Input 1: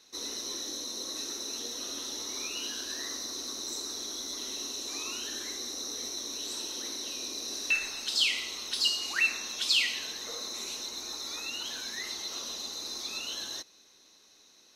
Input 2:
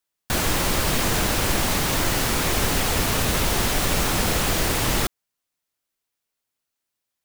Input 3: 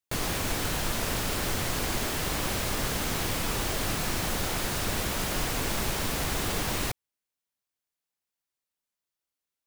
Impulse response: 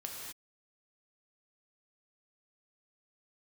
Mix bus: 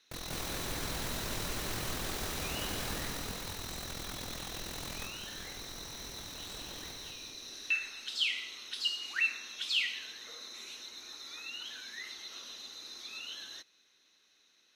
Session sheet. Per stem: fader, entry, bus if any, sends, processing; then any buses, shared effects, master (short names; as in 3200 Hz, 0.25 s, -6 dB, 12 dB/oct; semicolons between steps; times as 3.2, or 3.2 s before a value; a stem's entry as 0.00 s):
-12.0 dB, 0.00 s, no bus, no send, no echo send, band shelf 2200 Hz +8.5 dB
-13.0 dB, 0.00 s, bus A, no send, no echo send, dry
2.69 s -5 dB -> 3.37 s -17.5 dB, 0.00 s, bus A, no send, echo send -6 dB, dry
bus A: 0.0 dB, AM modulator 42 Hz, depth 95%; limiter -31.5 dBFS, peak gain reduction 11 dB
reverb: off
echo: feedback echo 0.193 s, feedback 57%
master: dry